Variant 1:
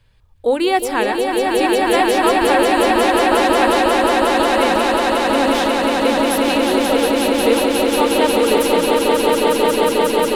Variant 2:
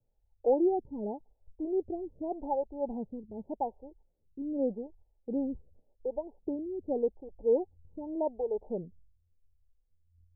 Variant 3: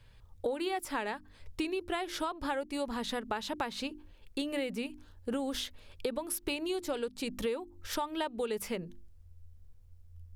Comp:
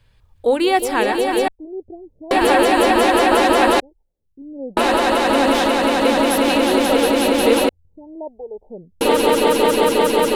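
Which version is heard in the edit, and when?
1
1.48–2.31 from 2
3.8–4.77 from 2
7.69–9.01 from 2
not used: 3

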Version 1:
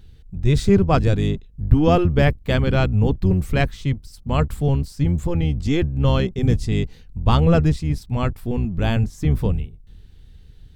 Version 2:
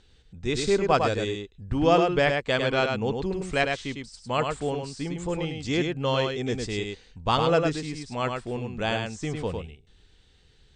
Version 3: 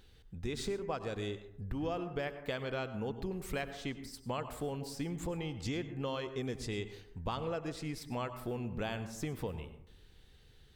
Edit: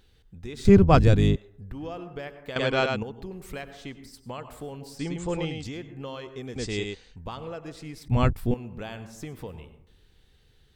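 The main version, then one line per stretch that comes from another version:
3
0.65–1.36 from 1
2.56–3.03 from 2
4.99–5.64 from 2
6.56–7.16 from 2
8.08–8.54 from 1

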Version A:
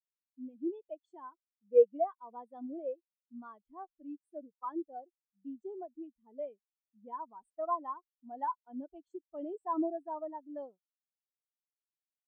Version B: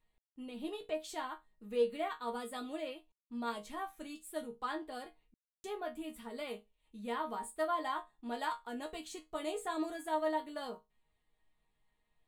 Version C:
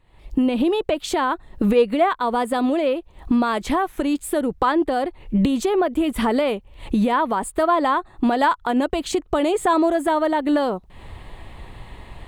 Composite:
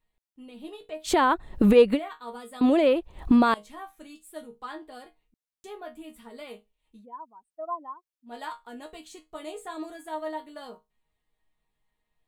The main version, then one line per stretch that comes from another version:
B
1.07–1.97 from C, crossfade 0.06 s
2.61–3.54 from C
7.01–8.31 from A, crossfade 0.10 s

